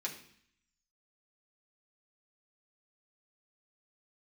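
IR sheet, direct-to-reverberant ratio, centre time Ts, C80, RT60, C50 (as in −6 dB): −3.0 dB, 19 ms, 12.5 dB, 0.60 s, 9.5 dB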